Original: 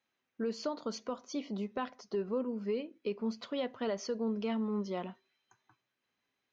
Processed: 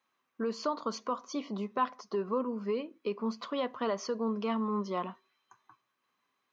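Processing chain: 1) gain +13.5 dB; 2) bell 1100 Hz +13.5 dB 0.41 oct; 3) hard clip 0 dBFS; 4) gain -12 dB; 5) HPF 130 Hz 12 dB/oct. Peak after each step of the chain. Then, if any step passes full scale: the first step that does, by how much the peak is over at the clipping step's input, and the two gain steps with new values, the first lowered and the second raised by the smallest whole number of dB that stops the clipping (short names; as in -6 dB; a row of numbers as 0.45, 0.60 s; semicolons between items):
-11.5, -5.5, -5.5, -17.5, -17.5 dBFS; no overload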